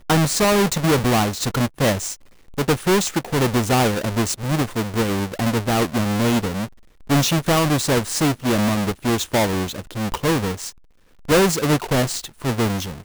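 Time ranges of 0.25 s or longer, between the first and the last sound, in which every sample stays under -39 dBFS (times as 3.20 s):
2.15–2.48 s
6.67–7.09 s
10.71–11.25 s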